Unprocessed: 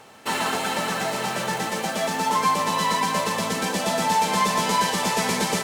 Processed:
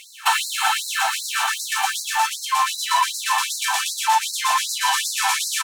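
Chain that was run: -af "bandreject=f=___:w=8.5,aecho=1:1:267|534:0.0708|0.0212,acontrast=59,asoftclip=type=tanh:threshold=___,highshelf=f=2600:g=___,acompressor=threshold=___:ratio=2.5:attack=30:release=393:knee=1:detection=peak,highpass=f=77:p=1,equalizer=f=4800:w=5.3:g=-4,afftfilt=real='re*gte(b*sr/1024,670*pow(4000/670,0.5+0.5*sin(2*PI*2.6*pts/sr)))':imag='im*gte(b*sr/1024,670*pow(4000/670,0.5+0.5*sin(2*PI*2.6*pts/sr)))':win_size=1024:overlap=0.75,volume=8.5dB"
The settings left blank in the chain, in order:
2000, -11.5dB, -2.5, -25dB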